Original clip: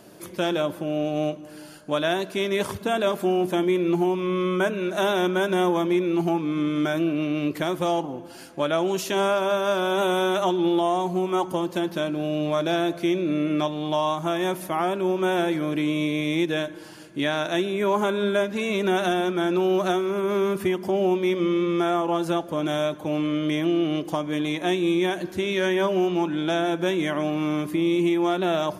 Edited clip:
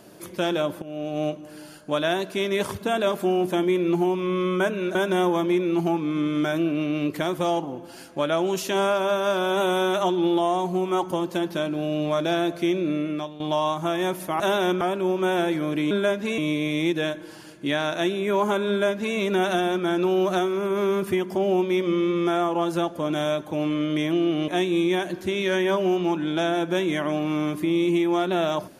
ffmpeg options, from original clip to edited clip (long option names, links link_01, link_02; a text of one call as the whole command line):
ffmpeg -i in.wav -filter_complex "[0:a]asplit=9[link_01][link_02][link_03][link_04][link_05][link_06][link_07][link_08][link_09];[link_01]atrim=end=0.82,asetpts=PTS-STARTPTS,afade=type=out:start_time=0.816:duration=0.004:curve=hsin:silence=0.223872[link_10];[link_02]atrim=start=0.82:end=4.952,asetpts=PTS-STARTPTS,afade=type=in:duration=0.47:silence=0.223872[link_11];[link_03]atrim=start=5.358:end=13.81,asetpts=PTS-STARTPTS,afade=type=out:start_time=7.902:duration=0.55:silence=0.223872[link_12];[link_04]atrim=start=13.81:end=14.812,asetpts=PTS-STARTPTS,afade=type=in:duration=0.004:curve=hsin:silence=0.223872[link_13];[link_05]atrim=start=4.948:end=5.362[link_14];[link_06]atrim=start=14.808:end=15.912[link_15];[link_07]atrim=start=18.218:end=18.692[link_16];[link_08]atrim=start=15.908:end=24.012[link_17];[link_09]atrim=start=24.588[link_18];[link_10][link_11]concat=n=2:v=0:a=1[link_19];[link_12][link_13]concat=n=2:v=0:a=1[link_20];[link_19][link_20]acrossfade=duration=0.004:curve1=hsin:curve2=hsin[link_21];[link_21][link_14]acrossfade=duration=0.004:curve1=hsin:curve2=hsin[link_22];[link_22][link_15]acrossfade=duration=0.004:curve1=hsin:curve2=hsin[link_23];[link_23][link_16]acrossfade=duration=0.004:curve1=hsin:curve2=hsin[link_24];[link_24][link_17]acrossfade=duration=0.004:curve1=hsin:curve2=hsin[link_25];[link_25][link_18]acrossfade=duration=0.004:curve1=hsin:curve2=hsin" out.wav